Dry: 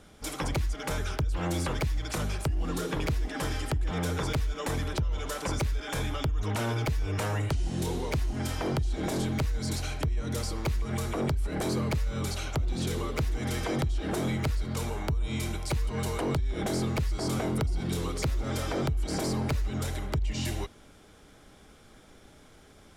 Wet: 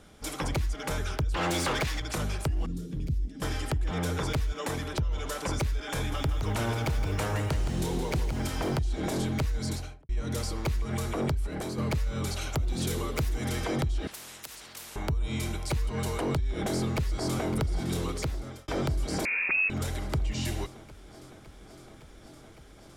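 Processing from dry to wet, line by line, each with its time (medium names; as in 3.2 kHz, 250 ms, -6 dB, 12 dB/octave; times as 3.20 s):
1.34–2.00 s: overdrive pedal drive 20 dB, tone 5.7 kHz, clips at -21.5 dBFS
2.66–3.42 s: FFT filter 210 Hz 0 dB, 910 Hz -29 dB, 5 kHz -14 dB
4.52–4.97 s: high-pass 110 Hz 6 dB/octave
5.95–8.79 s: bit-crushed delay 168 ms, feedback 55%, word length 9-bit, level -8.5 dB
9.64–10.09 s: studio fade out
11.33–11.78 s: fade out, to -7.5 dB
12.41–13.49 s: treble shelf 8.5 kHz +9 dB
14.07–14.96 s: spectrum-flattening compressor 10:1
16.43–17.47 s: echo throw 560 ms, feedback 85%, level -13.5 dB
18.11–18.68 s: fade out
19.25–19.70 s: frequency inversion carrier 2.6 kHz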